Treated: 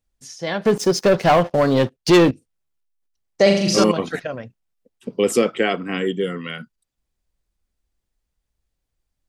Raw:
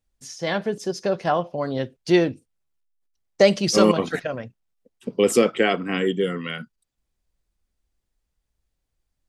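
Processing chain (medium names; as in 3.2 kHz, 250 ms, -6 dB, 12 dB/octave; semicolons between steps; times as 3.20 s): 0.65–2.31 s: waveshaping leveller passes 3; 3.42–3.84 s: flutter echo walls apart 6.9 m, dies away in 0.68 s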